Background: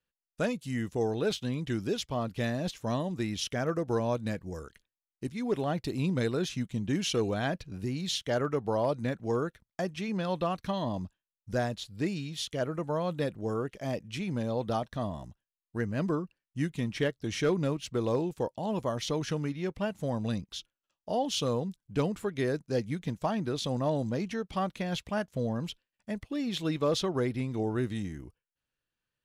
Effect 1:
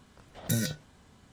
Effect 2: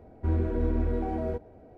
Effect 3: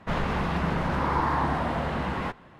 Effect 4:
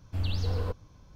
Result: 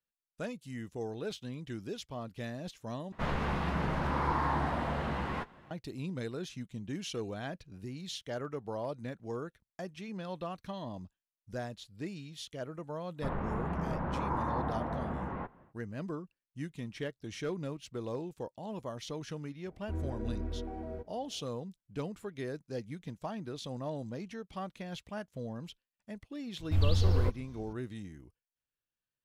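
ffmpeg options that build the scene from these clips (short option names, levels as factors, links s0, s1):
-filter_complex "[3:a]asplit=2[s0][s1];[0:a]volume=0.355[s2];[s0]asplit=2[s3][s4];[s4]adelay=14,volume=0.266[s5];[s3][s5]amix=inputs=2:normalize=0[s6];[s1]lowpass=1300[s7];[4:a]lowshelf=f=110:g=6[s8];[s2]asplit=2[s9][s10];[s9]atrim=end=3.124[s11];[s6]atrim=end=2.59,asetpts=PTS-STARTPTS,volume=0.501[s12];[s10]atrim=start=5.706[s13];[s7]atrim=end=2.59,asetpts=PTS-STARTPTS,volume=0.422,afade=t=in:d=0.1,afade=t=out:st=2.49:d=0.1,adelay=13150[s14];[2:a]atrim=end=1.77,asetpts=PTS-STARTPTS,volume=0.299,afade=t=in:d=0.004:c=hsin,afade=t=out:st=1.766:d=0.004:c=hsin,adelay=19650[s15];[s8]atrim=end=1.15,asetpts=PTS-STARTPTS,volume=0.944,afade=t=in:d=0.004:c=hsin,afade=t=out:st=1.146:d=0.004:c=hsin,adelay=26580[s16];[s11][s12]acrossfade=d=0.004:c1=hsin:c2=hsin[s17];[s17][s13]acrossfade=d=0.004:c1=hsin:c2=hsin[s18];[s18][s14][s15][s16]amix=inputs=4:normalize=0"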